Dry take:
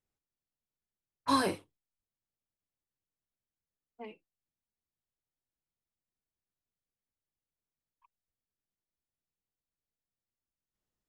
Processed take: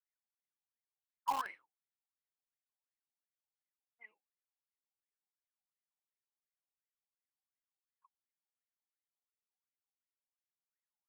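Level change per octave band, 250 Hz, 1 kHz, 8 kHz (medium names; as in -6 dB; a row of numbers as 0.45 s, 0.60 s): -26.0 dB, -4.5 dB, -11.5 dB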